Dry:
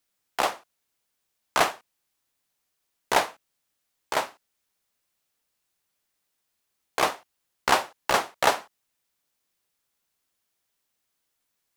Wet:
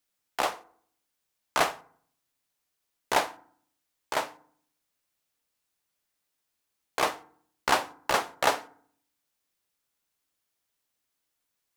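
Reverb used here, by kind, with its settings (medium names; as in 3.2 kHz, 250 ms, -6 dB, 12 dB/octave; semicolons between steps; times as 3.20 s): FDN reverb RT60 0.58 s, low-frequency decay 1.35×, high-frequency decay 0.55×, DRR 14.5 dB; trim -3 dB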